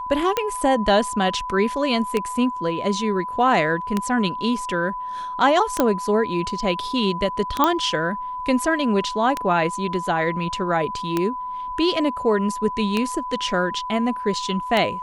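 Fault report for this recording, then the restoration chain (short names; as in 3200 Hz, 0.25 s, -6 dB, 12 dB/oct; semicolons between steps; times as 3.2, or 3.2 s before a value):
tick 33 1/3 rpm -7 dBFS
tone 1000 Hz -27 dBFS
5.8 pop -5 dBFS
7.64 pop -4 dBFS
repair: de-click; notch 1000 Hz, Q 30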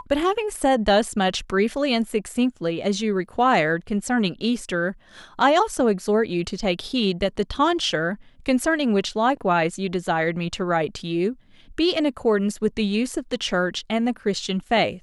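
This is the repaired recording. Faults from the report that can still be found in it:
none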